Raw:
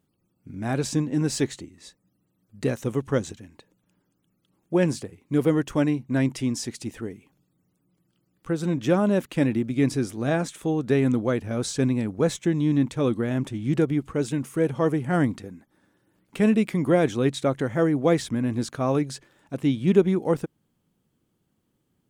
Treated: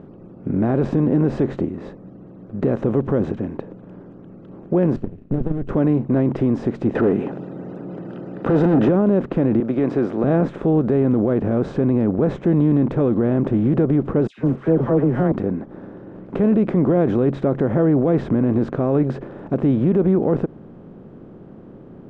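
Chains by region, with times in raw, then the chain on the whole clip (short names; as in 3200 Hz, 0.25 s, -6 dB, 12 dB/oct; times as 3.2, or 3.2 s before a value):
4.96–5.69 minimum comb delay 0.71 ms + passive tone stack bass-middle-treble 10-0-1 + transient shaper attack +12 dB, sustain +1 dB
6.95–8.89 tone controls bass +3 dB, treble -1 dB + overdrive pedal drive 28 dB, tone 6300 Hz, clips at -12.5 dBFS + notch comb 1100 Hz
9.6–10.24 weighting filter A + compressor 3:1, threshold -29 dBFS
14.27–15.32 G.711 law mismatch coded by A + dispersion lows, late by 0.108 s, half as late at 1600 Hz + three-band expander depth 100%
whole clip: per-bin compression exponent 0.6; Bessel low-pass 740 Hz, order 2; maximiser +16 dB; gain -8.5 dB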